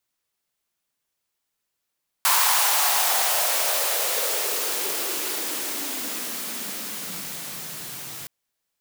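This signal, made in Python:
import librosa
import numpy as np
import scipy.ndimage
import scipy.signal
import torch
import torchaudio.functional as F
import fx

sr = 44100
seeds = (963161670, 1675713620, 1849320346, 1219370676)

y = fx.riser_noise(sr, seeds[0], length_s=6.02, colour='white', kind='highpass', start_hz=1000.0, end_hz=120.0, q=3.6, swell_db=-17.0, law='exponential')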